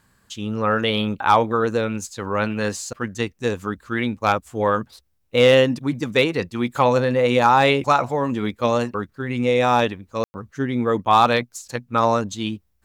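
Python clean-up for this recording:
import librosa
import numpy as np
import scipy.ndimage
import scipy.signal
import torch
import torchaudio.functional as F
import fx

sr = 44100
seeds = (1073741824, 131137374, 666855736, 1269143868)

y = fx.fix_declip(x, sr, threshold_db=-5.5)
y = fx.fix_ambience(y, sr, seeds[0], print_start_s=4.84, print_end_s=5.34, start_s=10.24, end_s=10.34)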